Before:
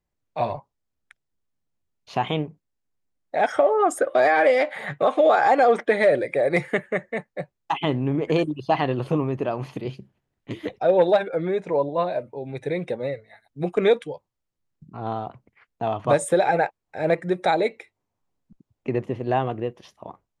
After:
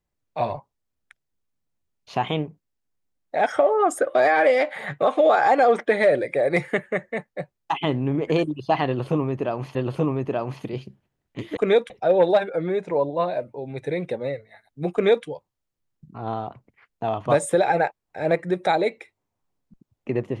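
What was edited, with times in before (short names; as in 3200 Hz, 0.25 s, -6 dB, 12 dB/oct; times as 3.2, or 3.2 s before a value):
8.87–9.75 loop, 2 plays
13.72–14.05 copy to 10.69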